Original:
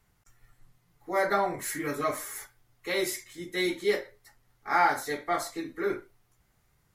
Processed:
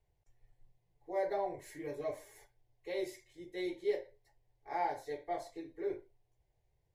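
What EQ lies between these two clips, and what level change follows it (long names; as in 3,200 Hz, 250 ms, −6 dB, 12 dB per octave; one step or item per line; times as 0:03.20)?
low-pass filter 1,300 Hz 6 dB per octave
phaser with its sweep stopped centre 540 Hz, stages 4
−5.0 dB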